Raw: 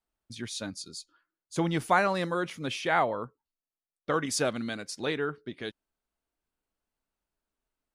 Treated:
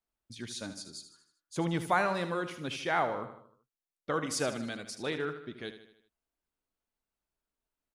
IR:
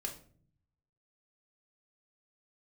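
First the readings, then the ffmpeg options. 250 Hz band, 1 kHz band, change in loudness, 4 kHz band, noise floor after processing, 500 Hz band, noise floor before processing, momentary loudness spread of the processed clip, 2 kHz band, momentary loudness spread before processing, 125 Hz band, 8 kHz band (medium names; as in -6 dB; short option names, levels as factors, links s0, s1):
-3.5 dB, -3.5 dB, -3.5 dB, -3.5 dB, under -85 dBFS, -3.5 dB, under -85 dBFS, 16 LU, -3.5 dB, 16 LU, -3.0 dB, -3.5 dB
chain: -af "aecho=1:1:77|154|231|308|385:0.282|0.144|0.0733|0.0374|0.0191,volume=0.631"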